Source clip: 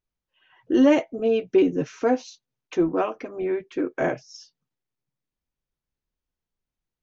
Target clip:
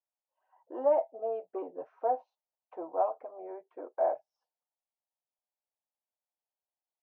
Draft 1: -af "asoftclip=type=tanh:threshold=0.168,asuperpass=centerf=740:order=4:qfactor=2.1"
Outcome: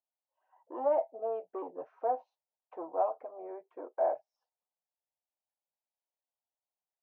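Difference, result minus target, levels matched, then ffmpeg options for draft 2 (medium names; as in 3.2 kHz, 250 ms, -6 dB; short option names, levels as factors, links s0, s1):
saturation: distortion +9 dB
-af "asoftclip=type=tanh:threshold=0.355,asuperpass=centerf=740:order=4:qfactor=2.1"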